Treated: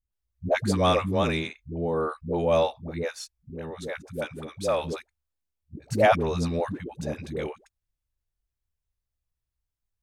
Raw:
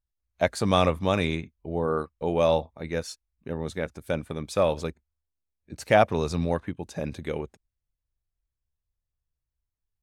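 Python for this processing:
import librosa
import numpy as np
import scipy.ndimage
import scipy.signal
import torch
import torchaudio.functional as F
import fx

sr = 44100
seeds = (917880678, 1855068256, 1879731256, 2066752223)

y = fx.dispersion(x, sr, late='highs', ms=123.0, hz=380.0)
y = fx.low_shelf(y, sr, hz=470.0, db=-6.5, at=(3.5, 4.84))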